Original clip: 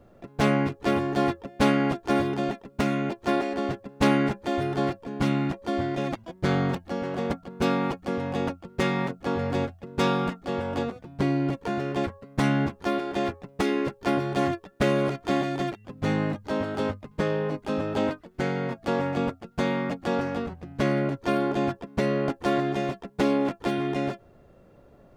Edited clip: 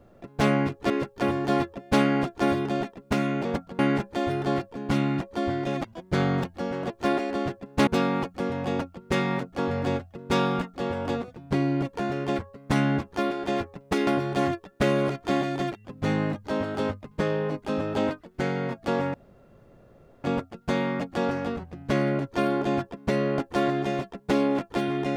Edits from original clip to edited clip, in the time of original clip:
3.13–4.10 s: swap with 7.21–7.55 s
13.75–14.07 s: move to 0.90 s
19.14 s: insert room tone 1.10 s

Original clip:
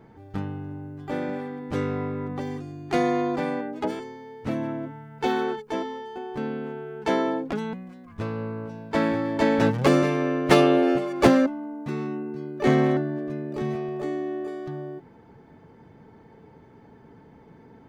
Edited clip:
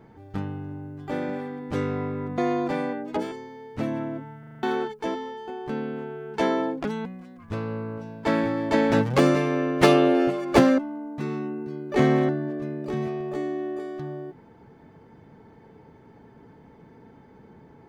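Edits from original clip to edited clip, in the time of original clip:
2.38–3.06 s: delete
5.07 s: stutter in place 0.04 s, 6 plays

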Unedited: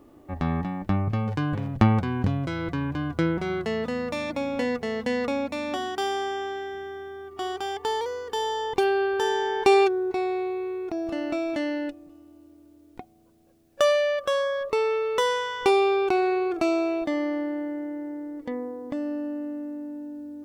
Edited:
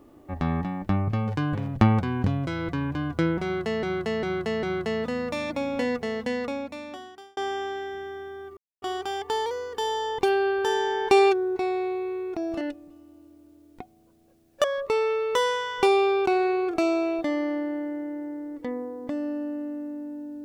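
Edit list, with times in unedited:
3.43–3.83 s: loop, 4 plays
4.83–6.17 s: fade out
7.37 s: insert silence 0.25 s
11.16–11.80 s: delete
13.83–14.47 s: delete

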